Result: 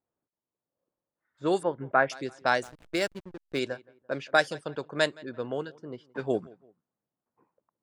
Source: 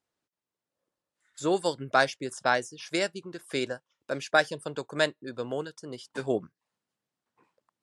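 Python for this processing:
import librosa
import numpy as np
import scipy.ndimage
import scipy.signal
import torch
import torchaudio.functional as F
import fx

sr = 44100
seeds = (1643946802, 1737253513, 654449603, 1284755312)

y = fx.echo_feedback(x, sr, ms=170, feedback_pct=38, wet_db=-23.5)
y = fx.env_lowpass(y, sr, base_hz=990.0, full_db=-22.5)
y = fx.cheby2_lowpass(y, sr, hz=6500.0, order=4, stop_db=60, at=(1.63, 2.1))
y = fx.backlash(y, sr, play_db=-35.0, at=(2.63, 3.59))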